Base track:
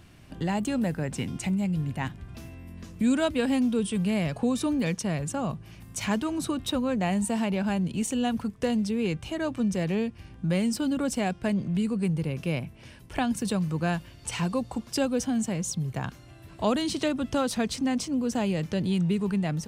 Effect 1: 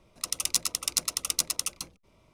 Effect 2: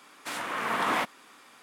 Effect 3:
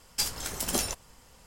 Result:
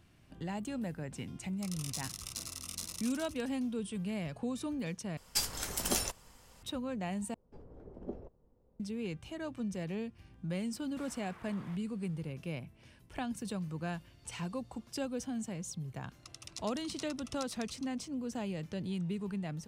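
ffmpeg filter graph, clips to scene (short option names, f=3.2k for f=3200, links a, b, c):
-filter_complex "[1:a]asplit=2[a][b];[3:a]asplit=2[c][d];[0:a]volume=-11dB[e];[a]aecho=1:1:20|50|95|162.5|263.8|415.6:0.794|0.631|0.501|0.398|0.316|0.251[f];[d]lowpass=f=440:t=q:w=1.7[g];[2:a]acompressor=threshold=-35dB:ratio=6:attack=3.2:release=140:knee=1:detection=peak[h];[b]lowpass=6k[i];[e]asplit=3[j][k][l];[j]atrim=end=5.174[m];[c]atrim=end=1.46,asetpts=PTS-STARTPTS,volume=-3dB[n];[k]atrim=start=6.626:end=7.344[o];[g]atrim=end=1.46,asetpts=PTS-STARTPTS,volume=-11dB[p];[l]atrim=start=8.796[q];[f]atrim=end=2.33,asetpts=PTS-STARTPTS,volume=-17.5dB,afade=t=in:d=0.004:c=hsin,afade=t=out:st=2.326:d=0.004:c=hsin,adelay=1390[r];[h]atrim=end=1.62,asetpts=PTS-STARTPTS,volume=-17dB,afade=t=in:d=0.004:c=hsin,afade=t=out:st=1.616:d=0.004:c=hsin,adelay=10710[s];[i]atrim=end=2.33,asetpts=PTS-STARTPTS,volume=-16.5dB,afade=t=in:d=0.004:c=hsin,afade=t=out:st=2.326:d=0.004:c=hsin,adelay=16020[t];[m][n]acrossfade=d=0.004:c1=hsin:c2=hsin[u];[u][o]acrossfade=d=0.004:c1=hsin:c2=hsin[v];[v][p]acrossfade=d=0.004:c1=hsin:c2=hsin[w];[w][q]acrossfade=d=0.004:c1=hsin:c2=hsin[x];[x][r][s][t]amix=inputs=4:normalize=0"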